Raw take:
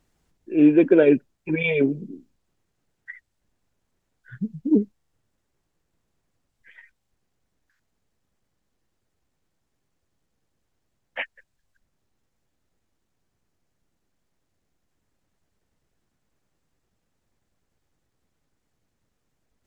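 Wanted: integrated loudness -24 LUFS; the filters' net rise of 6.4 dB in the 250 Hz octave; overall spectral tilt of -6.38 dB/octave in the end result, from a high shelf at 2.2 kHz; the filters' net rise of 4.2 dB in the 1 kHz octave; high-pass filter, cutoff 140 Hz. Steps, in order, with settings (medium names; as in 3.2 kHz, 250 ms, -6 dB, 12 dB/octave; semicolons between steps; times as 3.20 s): high-pass 140 Hz; peaking EQ 250 Hz +8.5 dB; peaking EQ 1 kHz +7.5 dB; treble shelf 2.2 kHz -9 dB; trim -9 dB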